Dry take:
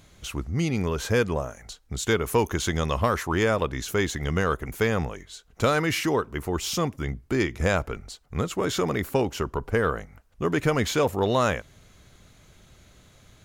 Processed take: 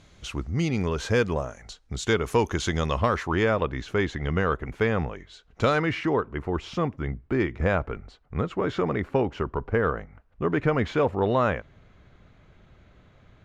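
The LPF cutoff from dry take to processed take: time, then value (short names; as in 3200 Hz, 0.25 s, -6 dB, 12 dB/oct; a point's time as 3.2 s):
2.76 s 6300 Hz
3.7 s 2900 Hz
5.11 s 2900 Hz
5.72 s 4900 Hz
5.93 s 2200 Hz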